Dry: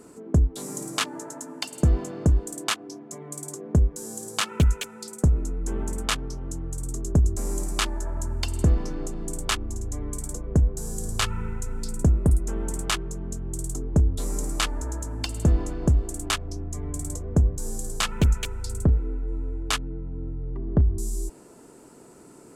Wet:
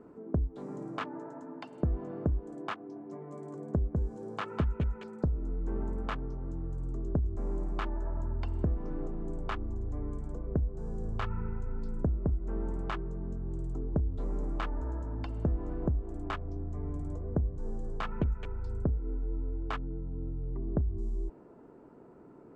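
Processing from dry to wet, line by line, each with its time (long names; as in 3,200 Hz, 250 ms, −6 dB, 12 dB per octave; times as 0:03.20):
0:02.76–0:05.31: single-tap delay 200 ms −3.5 dB
whole clip: low-pass filter 1,300 Hz 12 dB per octave; downward compressor 4 to 1, threshold −23 dBFS; level −4 dB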